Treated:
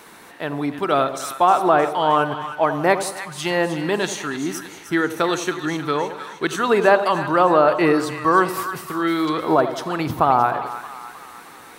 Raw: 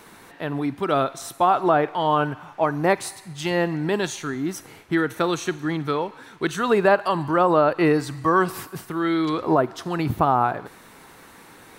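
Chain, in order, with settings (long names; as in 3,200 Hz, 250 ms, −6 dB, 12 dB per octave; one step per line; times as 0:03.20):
low-shelf EQ 210 Hz −9 dB
on a send: echo with a time of its own for lows and highs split 990 Hz, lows 89 ms, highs 311 ms, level −10 dB
on the sum: level +3.5 dB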